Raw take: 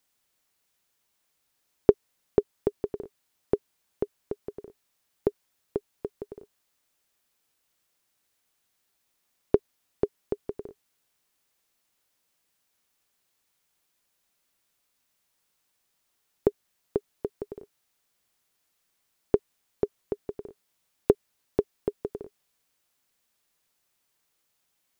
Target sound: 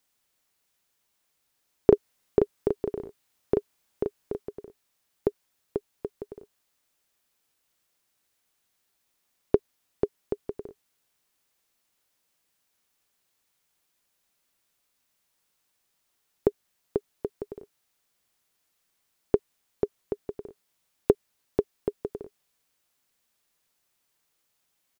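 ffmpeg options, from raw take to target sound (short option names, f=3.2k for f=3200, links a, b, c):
-filter_complex "[0:a]asplit=3[a][b][c];[a]afade=t=out:st=1.91:d=0.02[d];[b]asplit=2[e][f];[f]adelay=36,volume=-2.5dB[g];[e][g]amix=inputs=2:normalize=0,afade=t=in:st=1.91:d=0.02,afade=t=out:st=4.42:d=0.02[h];[c]afade=t=in:st=4.42:d=0.02[i];[d][h][i]amix=inputs=3:normalize=0"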